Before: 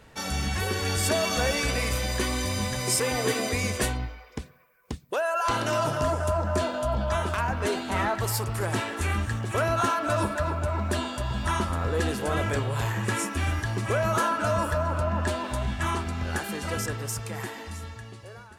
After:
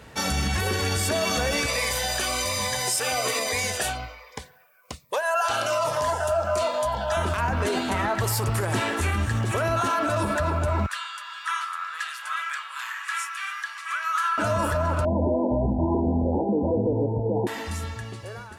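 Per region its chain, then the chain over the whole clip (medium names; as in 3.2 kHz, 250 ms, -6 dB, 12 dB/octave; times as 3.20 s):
1.66–7.17 s: high-pass 44 Hz + resonant low shelf 450 Hz -11.5 dB, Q 1.5 + Shepard-style phaser falling 1.2 Hz
10.86–14.38 s: elliptic high-pass 1.2 kHz, stop band 80 dB + treble shelf 2.8 kHz -10 dB
15.05–17.47 s: brick-wall FIR low-pass 1 kHz + small resonant body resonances 300/480 Hz, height 13 dB, ringing for 25 ms
whole clip: high-pass 43 Hz; peak limiter -22.5 dBFS; trim +6.5 dB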